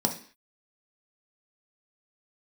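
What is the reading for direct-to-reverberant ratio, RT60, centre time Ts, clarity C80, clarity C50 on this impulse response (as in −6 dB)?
2.0 dB, 0.45 s, 13 ms, 16.0 dB, 11.0 dB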